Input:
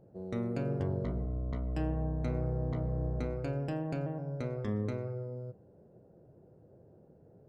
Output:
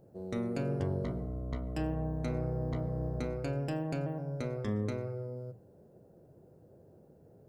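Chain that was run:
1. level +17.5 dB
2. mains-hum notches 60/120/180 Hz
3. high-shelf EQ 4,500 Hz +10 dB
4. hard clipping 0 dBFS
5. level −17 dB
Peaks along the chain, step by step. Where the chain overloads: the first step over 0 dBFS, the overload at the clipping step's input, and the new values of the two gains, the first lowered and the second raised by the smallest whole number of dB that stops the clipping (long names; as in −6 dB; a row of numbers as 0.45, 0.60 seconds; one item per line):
−2.5, −2.5, −2.5, −2.5, −19.5 dBFS
no step passes full scale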